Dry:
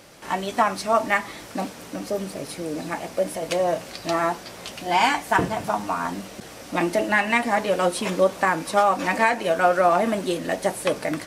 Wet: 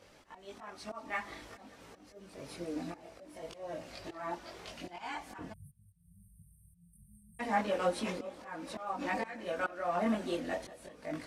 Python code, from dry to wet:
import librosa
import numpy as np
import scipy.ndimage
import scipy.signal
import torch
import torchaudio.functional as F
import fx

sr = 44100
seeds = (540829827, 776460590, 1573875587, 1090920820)

y = fx.high_shelf(x, sr, hz=8300.0, db=-11.5)
y = fx.auto_swell(y, sr, attack_ms=397.0)
y = fx.echo_feedback(y, sr, ms=191, feedback_pct=58, wet_db=-20)
y = fx.chorus_voices(y, sr, voices=6, hz=0.48, base_ms=21, depth_ms=2.4, mix_pct=55)
y = fx.brickwall_bandstop(y, sr, low_hz=180.0, high_hz=8400.0, at=(5.52, 7.39), fade=0.02)
y = F.gain(torch.from_numpy(y), -7.0).numpy()